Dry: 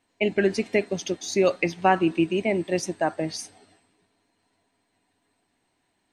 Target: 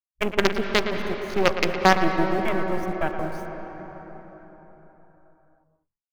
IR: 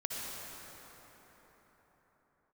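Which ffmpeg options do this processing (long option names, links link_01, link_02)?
-filter_complex "[0:a]acrusher=bits=3:dc=4:mix=0:aa=0.000001,afwtdn=0.02,asplit=2[link_01][link_02];[1:a]atrim=start_sample=2205,lowpass=3800,adelay=113[link_03];[link_02][link_03]afir=irnorm=-1:irlink=0,volume=-8dB[link_04];[link_01][link_04]amix=inputs=2:normalize=0,volume=1.5dB"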